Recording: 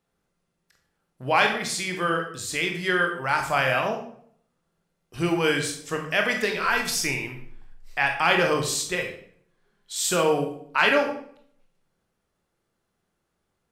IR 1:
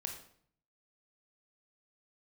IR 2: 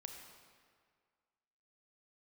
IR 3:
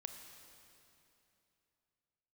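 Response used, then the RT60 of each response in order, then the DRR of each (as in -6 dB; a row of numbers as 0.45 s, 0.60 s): 1; 0.60 s, 1.9 s, 2.9 s; 2.5 dB, 3.0 dB, 5.5 dB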